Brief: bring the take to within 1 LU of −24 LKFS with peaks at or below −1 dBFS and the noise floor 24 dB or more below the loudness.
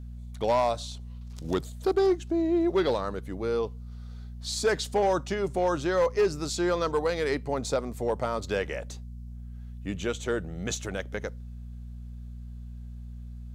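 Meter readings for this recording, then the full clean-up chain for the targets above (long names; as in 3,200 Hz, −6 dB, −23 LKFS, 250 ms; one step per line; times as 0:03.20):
share of clipped samples 0.7%; peaks flattened at −18.0 dBFS; mains hum 60 Hz; hum harmonics up to 240 Hz; level of the hum −38 dBFS; integrated loudness −28.5 LKFS; sample peak −18.0 dBFS; target loudness −24.0 LKFS
→ clipped peaks rebuilt −18 dBFS
hum removal 60 Hz, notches 4
level +4.5 dB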